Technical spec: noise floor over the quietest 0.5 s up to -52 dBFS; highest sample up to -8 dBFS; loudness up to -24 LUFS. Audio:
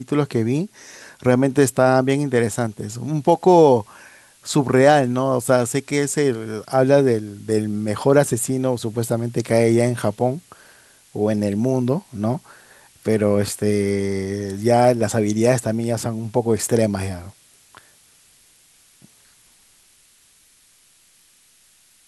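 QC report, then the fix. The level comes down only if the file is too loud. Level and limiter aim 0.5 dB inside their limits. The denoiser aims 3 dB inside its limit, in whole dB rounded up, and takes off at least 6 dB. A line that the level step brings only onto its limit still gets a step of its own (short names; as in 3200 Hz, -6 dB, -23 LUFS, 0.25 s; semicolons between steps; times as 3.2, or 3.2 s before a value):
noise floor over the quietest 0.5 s -56 dBFS: OK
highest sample -2.0 dBFS: fail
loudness -19.5 LUFS: fail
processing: gain -5 dB; limiter -8.5 dBFS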